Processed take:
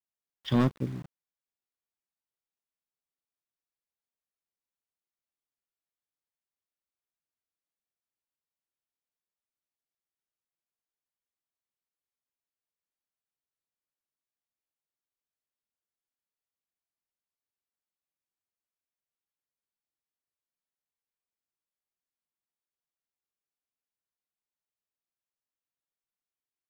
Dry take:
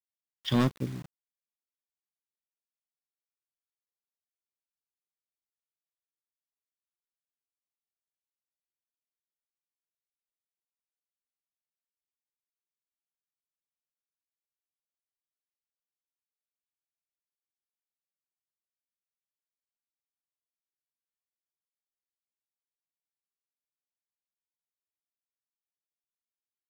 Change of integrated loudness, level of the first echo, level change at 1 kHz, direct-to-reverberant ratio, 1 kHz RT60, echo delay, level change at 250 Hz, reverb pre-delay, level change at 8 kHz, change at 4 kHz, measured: +1.0 dB, no echo audible, 0.0 dB, no reverb audible, no reverb audible, no echo audible, +1.0 dB, no reverb audible, −7.0 dB, −4.5 dB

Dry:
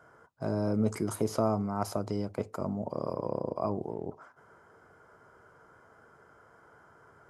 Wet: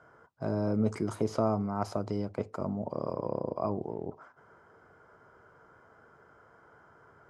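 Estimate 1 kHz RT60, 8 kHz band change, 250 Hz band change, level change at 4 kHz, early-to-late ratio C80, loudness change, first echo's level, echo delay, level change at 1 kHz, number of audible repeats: no reverb audible, can't be measured, 0.0 dB, −3.0 dB, no reverb audible, 0.0 dB, no echo audible, no echo audible, −0.5 dB, no echo audible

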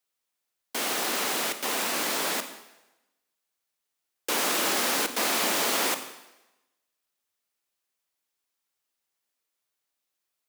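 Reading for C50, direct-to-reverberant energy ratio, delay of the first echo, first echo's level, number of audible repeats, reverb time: 10.5 dB, 9.0 dB, no echo audible, no echo audible, no echo audible, 1.0 s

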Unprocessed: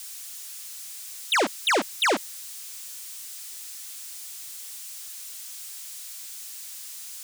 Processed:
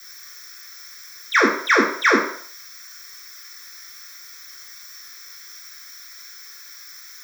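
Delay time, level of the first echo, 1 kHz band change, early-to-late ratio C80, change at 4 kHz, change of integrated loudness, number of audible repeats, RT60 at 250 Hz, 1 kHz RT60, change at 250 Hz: no echo audible, no echo audible, +5.5 dB, 8.0 dB, −1.5 dB, +12.5 dB, no echo audible, 0.45 s, 0.60 s, +9.5 dB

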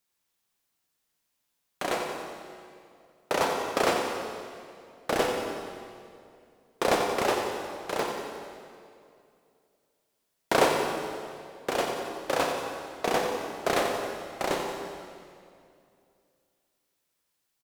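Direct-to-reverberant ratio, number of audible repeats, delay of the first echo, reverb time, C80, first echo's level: 1.5 dB, 4, 90 ms, 2.4 s, 3.0 dB, −9.0 dB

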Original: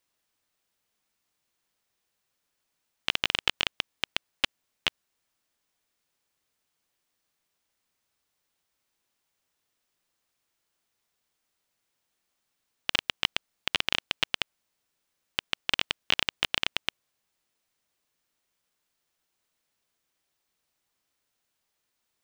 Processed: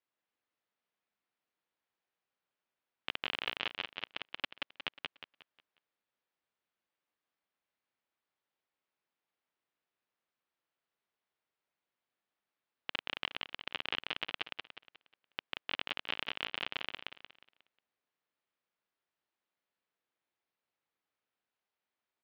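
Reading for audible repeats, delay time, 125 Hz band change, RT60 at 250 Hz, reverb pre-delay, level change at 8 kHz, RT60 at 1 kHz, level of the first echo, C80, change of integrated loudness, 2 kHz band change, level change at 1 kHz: 4, 180 ms, −12.0 dB, no reverb audible, no reverb audible, below −20 dB, no reverb audible, −3.0 dB, no reverb audible, −10.0 dB, −8.0 dB, −6.5 dB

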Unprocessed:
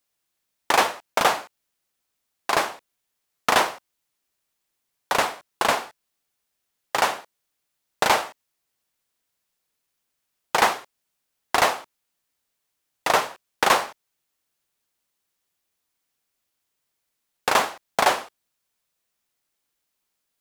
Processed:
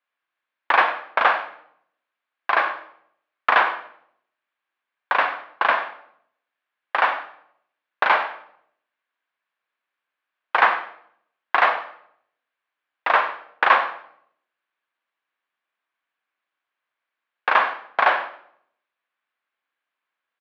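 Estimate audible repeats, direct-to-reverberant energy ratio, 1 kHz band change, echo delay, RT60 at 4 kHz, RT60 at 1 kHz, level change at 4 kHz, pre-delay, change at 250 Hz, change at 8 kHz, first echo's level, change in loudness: 1, 8.5 dB, +2.5 dB, 95 ms, 0.55 s, 0.60 s, −5.5 dB, 30 ms, −8.0 dB, below −30 dB, −15.5 dB, +2.0 dB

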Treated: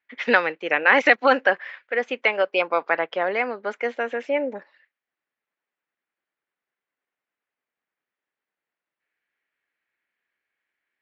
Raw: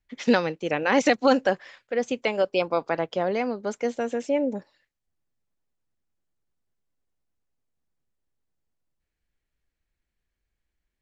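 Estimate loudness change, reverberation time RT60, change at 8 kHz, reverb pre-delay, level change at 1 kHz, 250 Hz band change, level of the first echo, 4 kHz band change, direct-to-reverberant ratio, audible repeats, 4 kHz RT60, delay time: +3.5 dB, no reverb audible, can't be measured, no reverb audible, +4.0 dB, −5.5 dB, no echo audible, +2.0 dB, no reverb audible, no echo audible, no reverb audible, no echo audible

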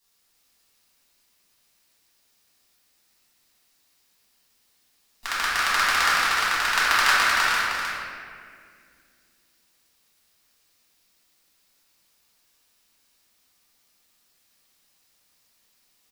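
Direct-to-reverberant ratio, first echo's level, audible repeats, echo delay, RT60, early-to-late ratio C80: −11.0 dB, −4.0 dB, 1, 309 ms, 2.1 s, −2.5 dB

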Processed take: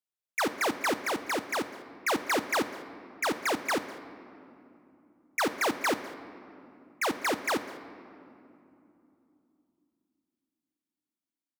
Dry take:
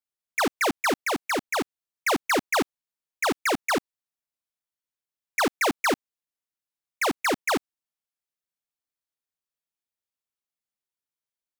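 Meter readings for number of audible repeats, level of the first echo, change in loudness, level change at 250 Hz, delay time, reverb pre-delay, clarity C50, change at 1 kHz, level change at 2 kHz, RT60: 1, −21.0 dB, −4.0 dB, −4.5 dB, 200 ms, 6 ms, 11.0 dB, −4.0 dB, −4.0 dB, 2.9 s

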